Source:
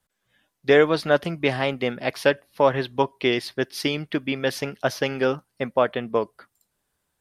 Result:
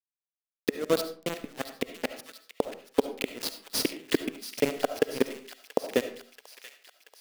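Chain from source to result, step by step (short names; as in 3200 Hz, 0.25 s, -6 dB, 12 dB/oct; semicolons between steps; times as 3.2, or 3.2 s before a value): HPF 110 Hz 12 dB/oct; tilt +2.5 dB/oct; notch 930 Hz, Q 11; compressor 8:1, threshold -26 dBFS, peak gain reduction 13.5 dB; bit-crush 5-bit; flipped gate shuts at -16 dBFS, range -30 dB; small resonant body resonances 260/440 Hz, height 13 dB, ringing for 20 ms; step gate "xx..xx.xxx" 177 bpm -60 dB; thin delay 0.682 s, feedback 64%, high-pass 1700 Hz, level -11.5 dB; on a send at -9.5 dB: reverb RT60 0.45 s, pre-delay 30 ms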